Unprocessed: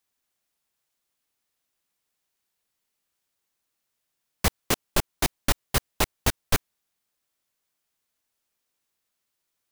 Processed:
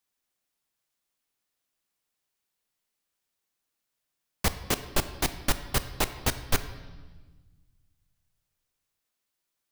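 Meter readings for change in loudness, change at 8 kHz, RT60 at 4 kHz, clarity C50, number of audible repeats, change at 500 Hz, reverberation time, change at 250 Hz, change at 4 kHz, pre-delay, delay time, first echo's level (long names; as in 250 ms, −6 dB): −2.5 dB, −3.0 dB, 1.3 s, 12.5 dB, no echo audible, −2.5 dB, 1.3 s, −2.5 dB, −2.5 dB, 3 ms, no echo audible, no echo audible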